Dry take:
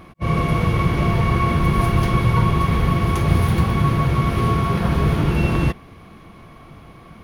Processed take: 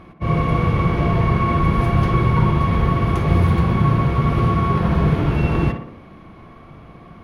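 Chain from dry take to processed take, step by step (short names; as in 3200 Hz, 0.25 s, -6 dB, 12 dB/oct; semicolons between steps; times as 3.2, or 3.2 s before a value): LPF 2600 Hz 6 dB/oct; tape echo 61 ms, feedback 65%, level -4.5 dB, low-pass 1800 Hz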